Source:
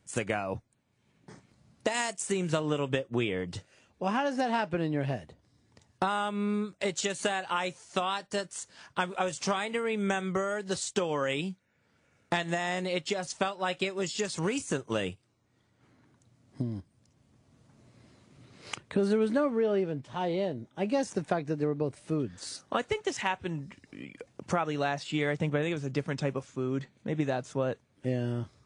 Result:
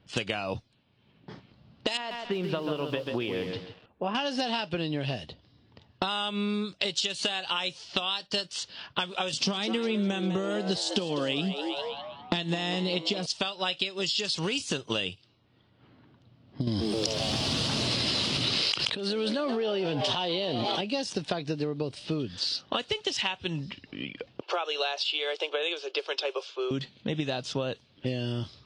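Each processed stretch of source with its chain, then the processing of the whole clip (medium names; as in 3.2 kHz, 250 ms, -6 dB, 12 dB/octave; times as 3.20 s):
1.97–4.15 s: low-pass 1.5 kHz + bass shelf 190 Hz -8.5 dB + bit-crushed delay 138 ms, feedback 35%, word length 9-bit, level -7 dB
9.33–13.26 s: peaking EQ 230 Hz +13 dB 1.9 oct + frequency-shifting echo 201 ms, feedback 49%, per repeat +140 Hz, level -12 dB
16.67–20.81 s: bass shelf 230 Hz -8 dB + frequency-shifting echo 130 ms, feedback 58%, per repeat +110 Hz, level -18 dB + level flattener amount 100%
24.41–26.71 s: steep high-pass 360 Hz 72 dB/octave + treble shelf 9.1 kHz -9 dB + band-stop 1.9 kHz, Q 6.9
whole clip: level-controlled noise filter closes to 1.7 kHz, open at -28.5 dBFS; high-order bell 3.8 kHz +14.5 dB 1.2 oct; compression, threshold -32 dBFS; trim +5.5 dB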